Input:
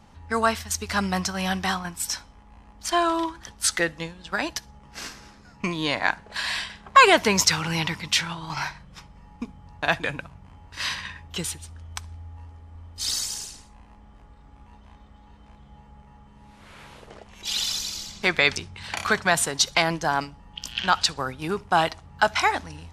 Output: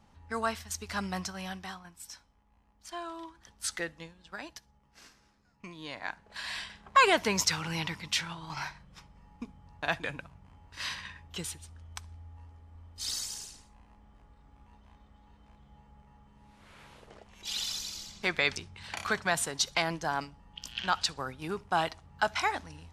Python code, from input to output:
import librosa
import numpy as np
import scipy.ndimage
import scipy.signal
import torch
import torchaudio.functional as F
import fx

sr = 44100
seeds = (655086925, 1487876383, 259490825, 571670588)

y = fx.gain(x, sr, db=fx.line((1.23, -9.5), (1.8, -18.0), (3.19, -18.0), (3.72, -11.0), (4.98, -19.0), (5.65, -19.0), (6.69, -8.0)))